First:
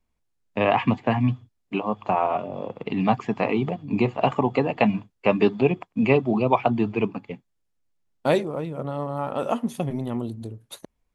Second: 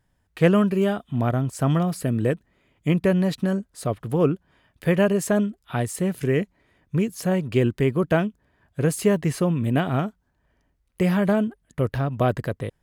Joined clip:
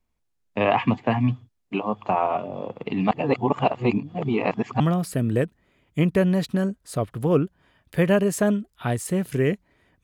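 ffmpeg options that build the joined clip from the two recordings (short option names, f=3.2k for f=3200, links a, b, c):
-filter_complex "[0:a]apad=whole_dur=10.03,atrim=end=10.03,asplit=2[a][b];[a]atrim=end=3.112[c];[b]atrim=start=3.108:end=4.802,asetpts=PTS-STARTPTS,areverse[d];[1:a]atrim=start=1.688:end=6.92[e];[c][d]acrossfade=d=0.004:c1=hsin:c2=hsin[f];[f][e]acrossfade=d=0.004:c1=hsin:c2=hsin"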